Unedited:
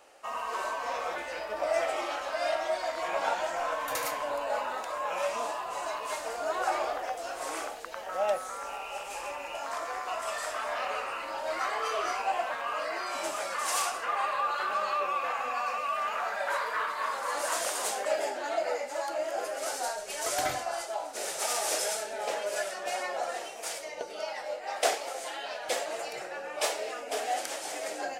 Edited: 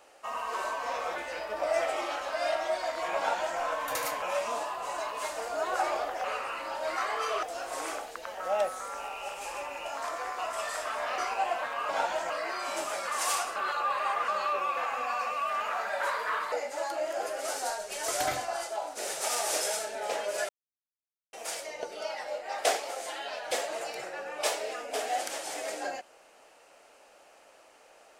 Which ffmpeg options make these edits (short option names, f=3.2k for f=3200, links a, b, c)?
-filter_complex "[0:a]asplit=12[a][b][c][d][e][f][g][h][i][j][k][l];[a]atrim=end=4.222[m];[b]atrim=start=5.098:end=7.122[n];[c]atrim=start=10.868:end=12.062[o];[d]atrim=start=7.118:end=10.872[p];[e]atrim=start=12.058:end=12.772[q];[f]atrim=start=3.168:end=3.582[r];[g]atrim=start=12.768:end=14.032[s];[h]atrim=start=14.028:end=14.752,asetpts=PTS-STARTPTS,areverse[t];[i]atrim=start=14.748:end=16.992[u];[j]atrim=start=18.698:end=22.67,asetpts=PTS-STARTPTS,afade=t=out:st=3.968:d=0.004:c=hsin[v];[k]atrim=start=22.67:end=23.51,asetpts=PTS-STARTPTS,volume=0[w];[l]atrim=start=23.51,asetpts=PTS-STARTPTS,afade=t=in:d=0.004:c=hsin[x];[m][n]acrossfade=d=0.004:c1=hsin:c2=hsin[y];[y][o]acrossfade=d=0.004:c1=hsin:c2=hsin[z];[z][p]acrossfade=d=0.004:c1=hsin:c2=hsin[aa];[aa][q]acrossfade=d=0.004:c1=hsin:c2=hsin[ab];[ab][r]acrossfade=d=0.004:c1=hsin:c2=hsin[ac];[ac][s]acrossfade=d=0.004:c1=hsin:c2=hsin[ad];[ad][t]acrossfade=d=0.004:c1=hsin:c2=hsin[ae];[ae][u]acrossfade=d=0.004:c1=hsin:c2=hsin[af];[v][w][x]concat=n=3:v=0:a=1[ag];[af][ag]acrossfade=d=0.004:c1=hsin:c2=hsin"